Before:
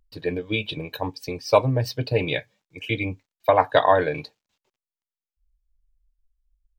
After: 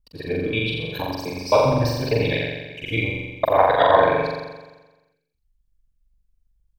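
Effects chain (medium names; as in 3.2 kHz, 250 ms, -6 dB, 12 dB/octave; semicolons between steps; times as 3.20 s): time reversed locally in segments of 66 ms; flutter echo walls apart 7.4 m, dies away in 1.2 s; trim -1 dB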